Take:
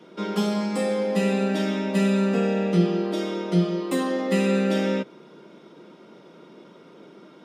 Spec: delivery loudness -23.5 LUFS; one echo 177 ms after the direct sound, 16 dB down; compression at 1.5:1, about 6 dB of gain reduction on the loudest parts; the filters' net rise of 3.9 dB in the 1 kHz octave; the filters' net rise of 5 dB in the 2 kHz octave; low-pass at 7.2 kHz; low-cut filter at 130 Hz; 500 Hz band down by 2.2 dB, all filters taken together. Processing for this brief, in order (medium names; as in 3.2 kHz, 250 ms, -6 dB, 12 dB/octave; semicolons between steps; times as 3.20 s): high-pass 130 Hz; low-pass 7.2 kHz; peaking EQ 500 Hz -4 dB; peaking EQ 1 kHz +5 dB; peaking EQ 2 kHz +5 dB; compression 1.5:1, threshold -33 dBFS; delay 177 ms -16 dB; trim +5.5 dB